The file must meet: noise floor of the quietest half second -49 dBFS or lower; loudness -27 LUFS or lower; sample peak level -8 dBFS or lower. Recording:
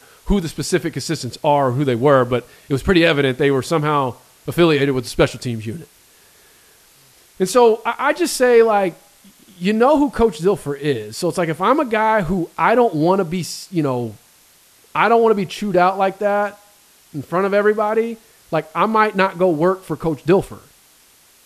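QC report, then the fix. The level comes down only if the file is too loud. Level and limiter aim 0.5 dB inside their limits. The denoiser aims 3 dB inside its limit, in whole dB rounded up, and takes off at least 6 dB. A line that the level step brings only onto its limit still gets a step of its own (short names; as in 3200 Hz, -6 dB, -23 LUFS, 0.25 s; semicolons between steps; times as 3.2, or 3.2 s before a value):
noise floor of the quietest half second -52 dBFS: OK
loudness -17.5 LUFS: fail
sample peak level -1.5 dBFS: fail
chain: gain -10 dB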